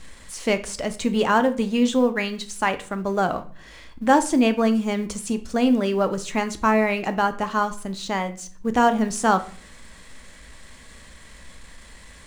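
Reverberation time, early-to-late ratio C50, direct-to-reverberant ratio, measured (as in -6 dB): 0.45 s, 15.0 dB, 9.0 dB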